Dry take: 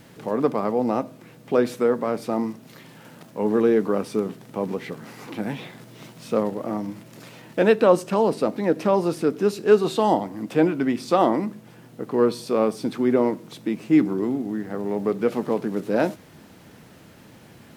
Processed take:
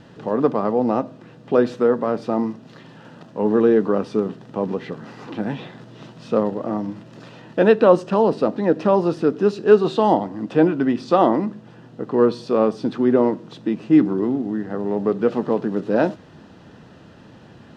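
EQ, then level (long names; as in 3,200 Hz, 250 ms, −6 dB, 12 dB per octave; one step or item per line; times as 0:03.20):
high-frequency loss of the air 140 metres
notch filter 2,200 Hz, Q 5.2
+3.5 dB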